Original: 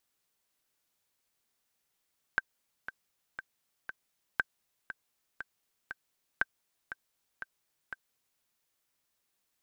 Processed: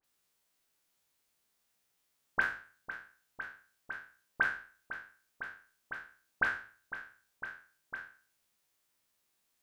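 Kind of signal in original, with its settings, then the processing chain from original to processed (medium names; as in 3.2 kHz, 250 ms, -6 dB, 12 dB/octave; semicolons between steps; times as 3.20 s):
metronome 119 bpm, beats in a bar 4, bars 3, 1.56 kHz, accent 12.5 dB -13 dBFS
spectral sustain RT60 0.44 s; de-hum 53.13 Hz, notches 2; phase dispersion highs, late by 41 ms, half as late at 2.4 kHz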